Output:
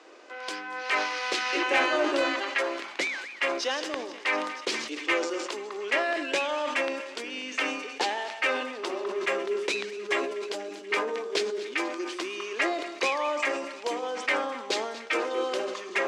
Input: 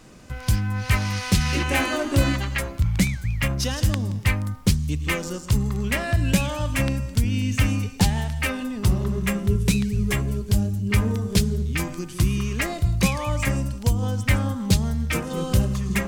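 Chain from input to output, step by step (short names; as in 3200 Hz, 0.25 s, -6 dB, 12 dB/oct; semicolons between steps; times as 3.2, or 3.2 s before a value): steep high-pass 330 Hz 48 dB/oct; air absorption 130 m; soft clip -14.5 dBFS, distortion -26 dB; high shelf 11000 Hz -5 dB; thinning echo 0.241 s, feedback 82%, high-pass 900 Hz, level -19 dB; sustainer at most 53 dB/s; gain +2 dB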